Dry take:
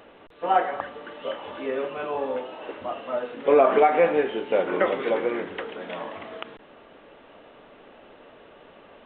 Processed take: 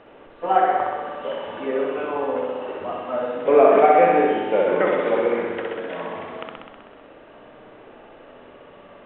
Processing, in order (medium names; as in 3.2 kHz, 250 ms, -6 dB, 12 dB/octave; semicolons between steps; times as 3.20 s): distance through air 270 m; flutter echo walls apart 10.9 m, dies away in 1.4 s; trim +2 dB